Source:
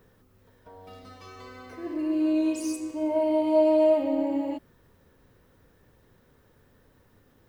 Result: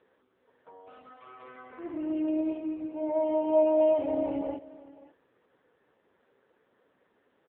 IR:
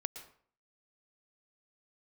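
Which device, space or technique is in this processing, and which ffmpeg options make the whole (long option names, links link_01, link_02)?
satellite phone: -filter_complex "[0:a]asplit=3[link_01][link_02][link_03];[link_01]afade=type=out:start_time=2.25:duration=0.02[link_04];[link_02]adynamicequalizer=threshold=0.00141:dfrequency=2900:dqfactor=2:tfrequency=2900:tqfactor=2:attack=5:release=100:ratio=0.375:range=2:mode=cutabove:tftype=bell,afade=type=in:start_time=2.25:duration=0.02,afade=type=out:start_time=3.2:duration=0.02[link_05];[link_03]afade=type=in:start_time=3.2:duration=0.02[link_06];[link_04][link_05][link_06]amix=inputs=3:normalize=0,highpass=350,lowpass=3200,aecho=1:1:534:0.119" -ar 8000 -c:a libopencore_amrnb -b:a 5900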